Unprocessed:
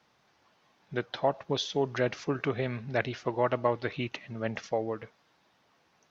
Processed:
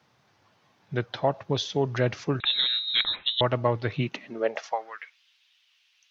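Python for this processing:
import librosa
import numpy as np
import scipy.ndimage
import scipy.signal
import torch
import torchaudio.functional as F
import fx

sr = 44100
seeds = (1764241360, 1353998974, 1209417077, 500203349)

y = fx.filter_sweep_highpass(x, sr, from_hz=100.0, to_hz=2900.0, start_s=3.89, end_s=5.18, q=3.2)
y = fx.freq_invert(y, sr, carrier_hz=3900, at=(2.4, 3.41))
y = y * librosa.db_to_amplitude(2.0)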